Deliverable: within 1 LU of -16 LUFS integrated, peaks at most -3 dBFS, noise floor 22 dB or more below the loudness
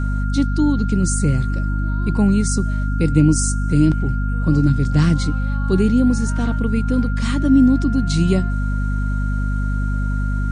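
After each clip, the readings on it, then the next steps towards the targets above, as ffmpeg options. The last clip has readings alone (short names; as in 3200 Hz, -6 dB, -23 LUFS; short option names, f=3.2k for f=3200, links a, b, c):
hum 50 Hz; harmonics up to 250 Hz; hum level -17 dBFS; steady tone 1400 Hz; tone level -31 dBFS; loudness -18.5 LUFS; peak -2.0 dBFS; loudness target -16.0 LUFS
-> -af "bandreject=f=50:t=h:w=4,bandreject=f=100:t=h:w=4,bandreject=f=150:t=h:w=4,bandreject=f=200:t=h:w=4,bandreject=f=250:t=h:w=4"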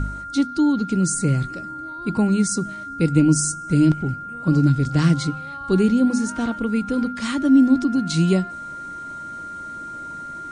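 hum none; steady tone 1400 Hz; tone level -31 dBFS
-> -af "bandreject=f=1.4k:w=30"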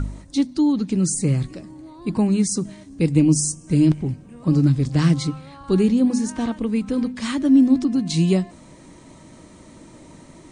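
steady tone none; loudness -20.0 LUFS; peak -5.0 dBFS; loudness target -16.0 LUFS
-> -af "volume=4dB,alimiter=limit=-3dB:level=0:latency=1"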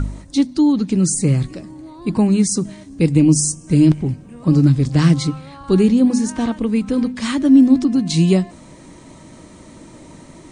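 loudness -16.0 LUFS; peak -3.0 dBFS; noise floor -42 dBFS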